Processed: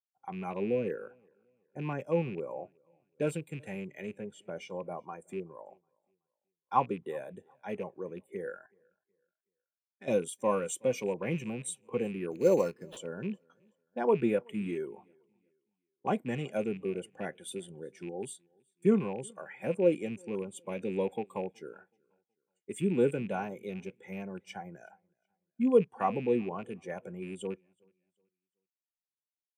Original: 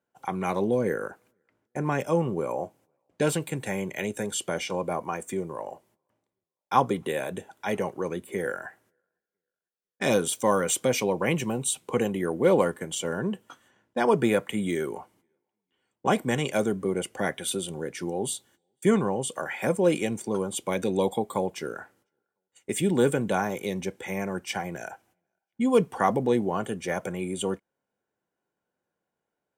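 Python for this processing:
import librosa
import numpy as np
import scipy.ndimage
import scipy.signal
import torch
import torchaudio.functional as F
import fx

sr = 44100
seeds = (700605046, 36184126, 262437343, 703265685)

y = fx.rattle_buzz(x, sr, strikes_db=-32.0, level_db=-22.0)
y = fx.high_shelf(y, sr, hz=3500.0, db=-11.5, at=(4.12, 4.55), fade=0.02)
y = fx.level_steps(y, sr, step_db=17, at=(8.66, 10.08))
y = fx.peak_eq(y, sr, hz=12000.0, db=3.0, octaves=0.47)
y = fx.sample_hold(y, sr, seeds[0], rate_hz=6800.0, jitter_pct=0, at=(12.31, 12.97))
y = fx.echo_feedback(y, sr, ms=373, feedback_pct=46, wet_db=-21.0)
y = fx.spectral_expand(y, sr, expansion=1.5)
y = y * librosa.db_to_amplitude(-5.0)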